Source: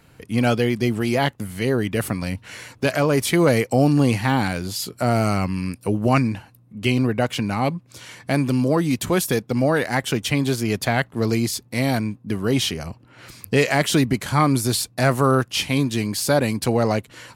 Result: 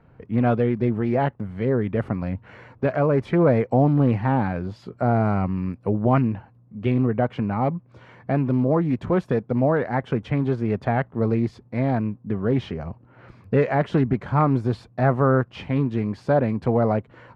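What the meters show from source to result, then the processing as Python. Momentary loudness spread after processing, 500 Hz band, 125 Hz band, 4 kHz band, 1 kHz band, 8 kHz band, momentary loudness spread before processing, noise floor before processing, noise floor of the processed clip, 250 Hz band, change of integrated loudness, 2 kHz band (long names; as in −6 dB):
8 LU, −0.5 dB, 0.0 dB, below −15 dB, −1.5 dB, below −30 dB, 8 LU, −53 dBFS, −54 dBFS, −1.5 dB, −1.5 dB, −8.0 dB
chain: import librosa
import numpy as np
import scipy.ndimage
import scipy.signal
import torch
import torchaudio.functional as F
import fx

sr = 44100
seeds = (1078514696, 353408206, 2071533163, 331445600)

y = scipy.signal.sosfilt(scipy.signal.butter(2, 1200.0, 'lowpass', fs=sr, output='sos'), x)
y = fx.peak_eq(y, sr, hz=300.0, db=-4.5, octaves=0.28)
y = fx.doppler_dist(y, sr, depth_ms=0.19)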